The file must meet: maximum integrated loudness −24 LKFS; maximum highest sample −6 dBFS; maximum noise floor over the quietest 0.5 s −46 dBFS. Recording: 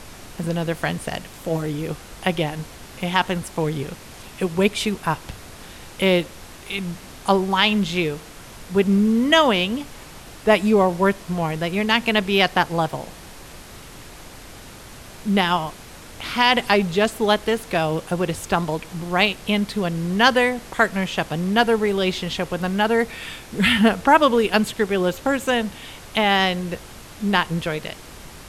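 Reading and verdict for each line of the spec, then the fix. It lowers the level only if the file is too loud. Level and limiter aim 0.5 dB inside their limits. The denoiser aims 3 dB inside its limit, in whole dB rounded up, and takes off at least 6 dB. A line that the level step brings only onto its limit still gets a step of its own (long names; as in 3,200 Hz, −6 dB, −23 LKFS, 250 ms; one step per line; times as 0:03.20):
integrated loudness −21.0 LKFS: out of spec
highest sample −3.0 dBFS: out of spec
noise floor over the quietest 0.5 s −40 dBFS: out of spec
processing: broadband denoise 6 dB, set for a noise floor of −40 dBFS
level −3.5 dB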